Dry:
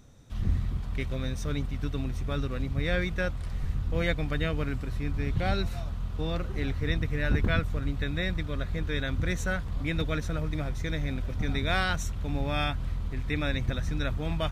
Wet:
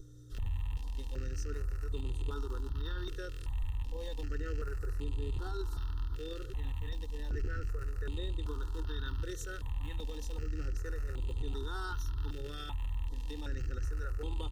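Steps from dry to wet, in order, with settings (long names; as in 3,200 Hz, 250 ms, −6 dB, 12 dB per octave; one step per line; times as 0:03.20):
loose part that buzzes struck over −31 dBFS, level −23 dBFS
mains hum 60 Hz, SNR 11 dB
phaser with its sweep stopped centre 620 Hz, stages 6
comb filter 2.2 ms, depth 60%
brickwall limiter −25.5 dBFS, peak gain reduction 11 dB
step-sequenced phaser 2.6 Hz 240–5,500 Hz
level −2 dB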